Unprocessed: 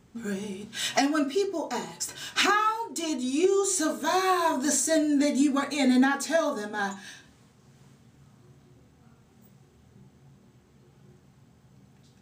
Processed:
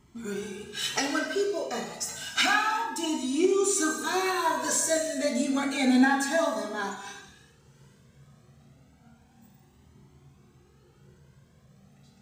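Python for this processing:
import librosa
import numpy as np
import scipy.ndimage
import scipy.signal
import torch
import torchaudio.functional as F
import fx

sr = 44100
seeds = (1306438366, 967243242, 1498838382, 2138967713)

y = fx.rev_gated(x, sr, seeds[0], gate_ms=430, shape='falling', drr_db=3.5)
y = fx.comb_cascade(y, sr, direction='rising', hz=0.3)
y = F.gain(torch.from_numpy(y), 3.0).numpy()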